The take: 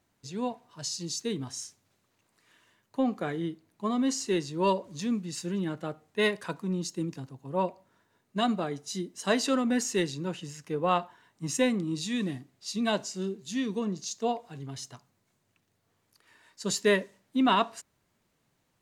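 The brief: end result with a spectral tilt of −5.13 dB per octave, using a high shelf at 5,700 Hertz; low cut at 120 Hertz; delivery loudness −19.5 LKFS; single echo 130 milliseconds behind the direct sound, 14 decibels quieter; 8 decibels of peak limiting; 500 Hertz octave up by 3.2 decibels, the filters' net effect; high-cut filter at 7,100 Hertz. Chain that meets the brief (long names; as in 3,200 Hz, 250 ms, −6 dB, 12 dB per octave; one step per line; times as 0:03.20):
high-pass filter 120 Hz
low-pass filter 7,100 Hz
parametric band 500 Hz +4 dB
high-shelf EQ 5,700 Hz −5.5 dB
brickwall limiter −18.5 dBFS
single-tap delay 130 ms −14 dB
level +12 dB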